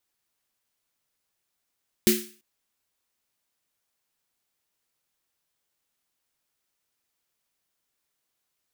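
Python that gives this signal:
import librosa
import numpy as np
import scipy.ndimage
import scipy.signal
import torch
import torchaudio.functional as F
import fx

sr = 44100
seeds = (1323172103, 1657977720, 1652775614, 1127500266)

y = fx.drum_snare(sr, seeds[0], length_s=0.34, hz=220.0, second_hz=360.0, noise_db=-3.0, noise_from_hz=1700.0, decay_s=0.35, noise_decay_s=0.42)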